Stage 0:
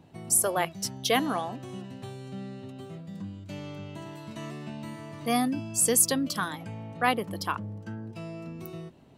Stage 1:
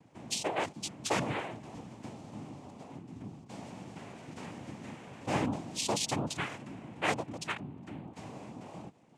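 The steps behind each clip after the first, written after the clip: band-stop 3.4 kHz, Q 8.3; noise-vocoded speech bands 4; trim -5.5 dB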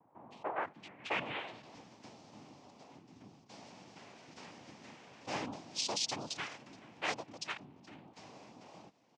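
bass shelf 250 Hz -11.5 dB; delay 424 ms -22.5 dB; low-pass sweep 1 kHz -> 5.3 kHz, 0.28–1.78 s; trim -5.5 dB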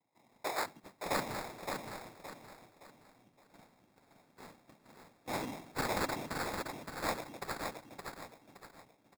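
gate -51 dBFS, range -15 dB; sample-rate reducer 3 kHz, jitter 0%; on a send: feedback delay 568 ms, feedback 35%, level -5 dB; on the sum: trim +1 dB

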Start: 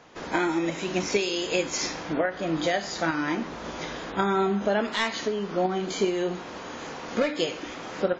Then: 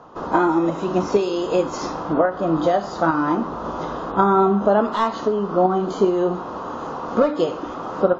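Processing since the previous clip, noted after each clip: low-pass 3.3 kHz 6 dB/octave; resonant high shelf 1.5 kHz -7.5 dB, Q 3; band-stop 2.3 kHz, Q 8.3; trim +7 dB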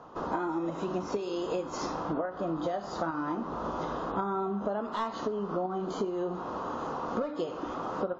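compression, threshold -24 dBFS, peak gain reduction 12.5 dB; trim -5 dB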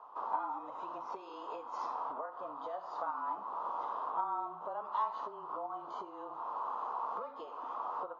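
ladder band-pass 1.2 kHz, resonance 55%; peaking EQ 1.7 kHz -10.5 dB 1.3 oct; frequency shift -29 Hz; trim +10 dB

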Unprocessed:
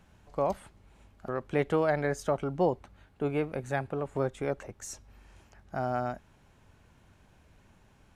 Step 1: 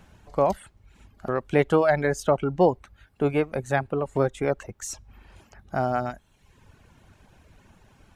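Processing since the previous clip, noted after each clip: reverb removal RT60 0.78 s; trim +7.5 dB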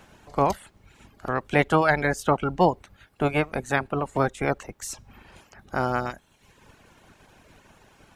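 spectral peaks clipped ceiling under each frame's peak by 13 dB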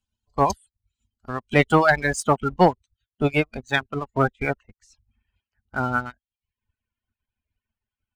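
expander on every frequency bin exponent 2; low-pass sweep 8.5 kHz -> 2.1 kHz, 3.37–4.06 s; waveshaping leveller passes 1; trim +3 dB

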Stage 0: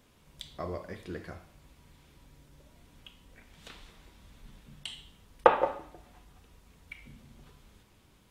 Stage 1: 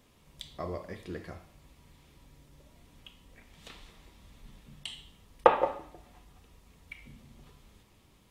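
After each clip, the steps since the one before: band-stop 1.5 kHz, Q 10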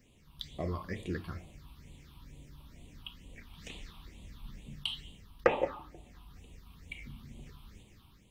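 level rider gain up to 5 dB; phase shifter stages 6, 2.2 Hz, lowest notch 490–1500 Hz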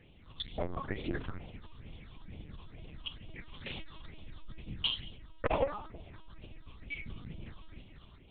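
LPC vocoder at 8 kHz pitch kept; transformer saturation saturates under 460 Hz; trim +5 dB

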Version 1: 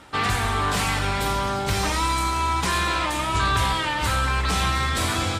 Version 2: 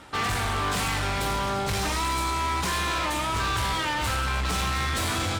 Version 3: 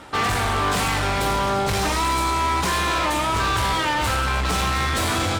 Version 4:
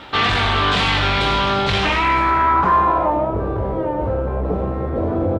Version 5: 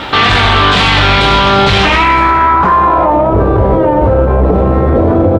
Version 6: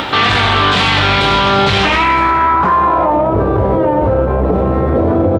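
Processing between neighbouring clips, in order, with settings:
hard clipper -24 dBFS, distortion -9 dB
peaking EQ 550 Hz +3.5 dB 2.5 oct; trim +3.5 dB
low-pass sweep 3.5 kHz -> 520 Hz, 1.72–3.39 s; doubling 21 ms -12 dB; bit crusher 12-bit; trim +2.5 dB
loudness maximiser +17.5 dB; trim -1 dB
high-pass 69 Hz; upward compressor, threshold -12 dBFS; trim -3 dB

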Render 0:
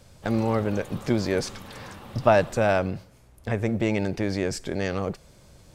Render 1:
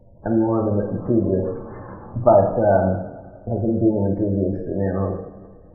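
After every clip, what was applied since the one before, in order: low-pass 1.2 kHz 12 dB/octave; spectral gate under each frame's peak -20 dB strong; two-slope reverb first 0.84 s, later 2.8 s, from -18 dB, DRR 0.5 dB; trim +3 dB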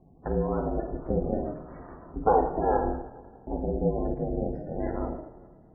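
ring modulator 160 Hz; trim -5.5 dB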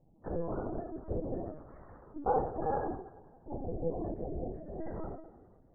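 LPC vocoder at 8 kHz pitch kept; trim -8 dB

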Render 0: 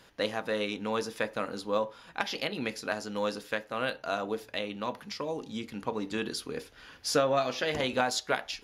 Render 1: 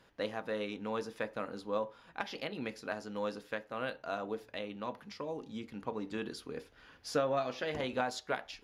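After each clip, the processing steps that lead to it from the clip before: treble shelf 3.1 kHz -8.5 dB; trim -5 dB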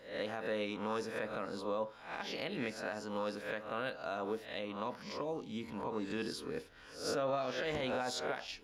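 reverse spectral sustain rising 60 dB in 0.47 s; peak limiter -26.5 dBFS, peak gain reduction 10 dB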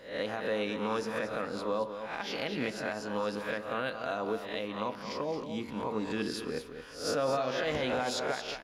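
delay 224 ms -9 dB; trim +4.5 dB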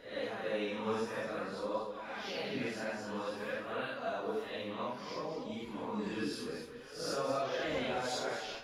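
phase randomisation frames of 200 ms; flange 0.53 Hz, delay 2 ms, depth 7.5 ms, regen +55%

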